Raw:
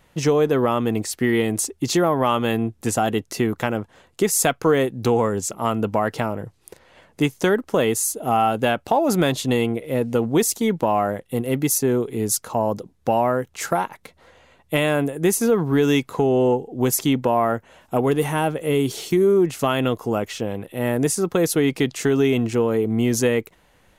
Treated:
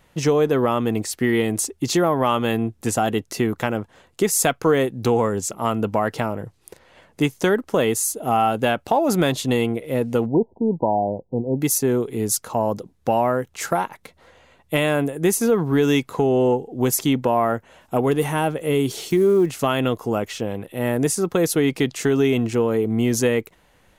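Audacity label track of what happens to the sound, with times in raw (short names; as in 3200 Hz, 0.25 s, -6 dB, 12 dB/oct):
10.260000	11.610000	brick-wall FIR low-pass 1000 Hz
19.040000	19.550000	block floating point 7-bit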